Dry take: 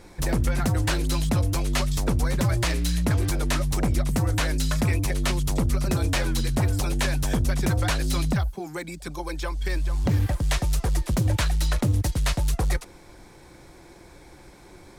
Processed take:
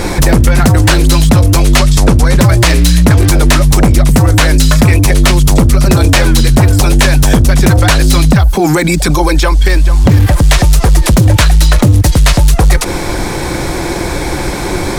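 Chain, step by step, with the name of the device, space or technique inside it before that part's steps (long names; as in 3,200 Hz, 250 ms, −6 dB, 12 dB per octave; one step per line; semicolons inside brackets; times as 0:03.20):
loud club master (downward compressor 2.5 to 1, threshold −26 dBFS, peak gain reduction 5 dB; hard clipping −22.5 dBFS, distortion −27 dB; boost into a limiter +33.5 dB)
0:01.79–0:02.40: low-pass filter 12,000 Hz 12 dB per octave
level −1 dB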